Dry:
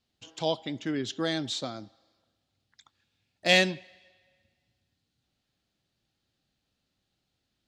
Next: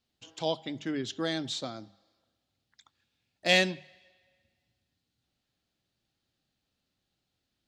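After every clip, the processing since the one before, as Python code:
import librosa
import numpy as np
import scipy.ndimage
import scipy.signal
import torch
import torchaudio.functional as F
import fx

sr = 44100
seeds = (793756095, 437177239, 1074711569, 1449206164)

y = fx.hum_notches(x, sr, base_hz=50, count=4)
y = y * librosa.db_to_amplitude(-2.0)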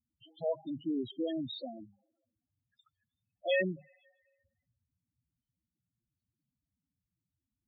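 y = fx.spec_topn(x, sr, count=4)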